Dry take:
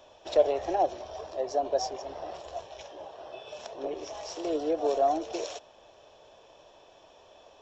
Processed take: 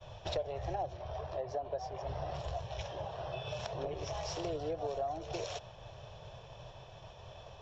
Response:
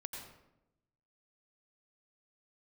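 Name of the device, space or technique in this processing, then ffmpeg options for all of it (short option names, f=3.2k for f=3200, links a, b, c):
jukebox: -filter_complex "[0:a]lowpass=5.6k,lowshelf=f=190:t=q:w=3:g=13,acompressor=threshold=-40dB:ratio=5,agate=range=-33dB:threshold=-52dB:ratio=3:detection=peak,asettb=1/sr,asplit=3[a][b][c];[a]atrim=end=0.974[d];[b]atrim=start=0.97:end=2.07,asetpts=PTS-STARTPTS,afade=t=in:d=0.004:c=qsin,afade=t=out:st=1.096:d=0.004:c=qsin,bass=f=250:g=-4,treble=f=4k:g=-10[e];[c]atrim=start=2.066[f];[d][e]acrossfade=d=0.004:c1=hsin:c2=qsin[g];[g][f]acrossfade=d=0.004:c1=qsin:c2=hsin,volume=4.5dB"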